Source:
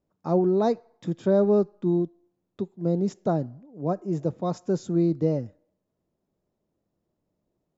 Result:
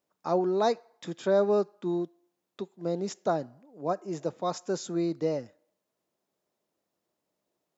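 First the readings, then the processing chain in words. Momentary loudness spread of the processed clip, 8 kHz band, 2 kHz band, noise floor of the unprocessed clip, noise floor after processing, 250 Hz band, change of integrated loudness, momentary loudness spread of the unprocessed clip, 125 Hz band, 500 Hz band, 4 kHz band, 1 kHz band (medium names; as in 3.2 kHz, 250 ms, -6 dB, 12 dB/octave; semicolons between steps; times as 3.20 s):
11 LU, no reading, +4.5 dB, -80 dBFS, -84 dBFS, -7.5 dB, -4.5 dB, 11 LU, -11.0 dB, -3.0 dB, +6.0 dB, +1.0 dB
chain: high-pass 1.3 kHz 6 dB/octave; trim +6.5 dB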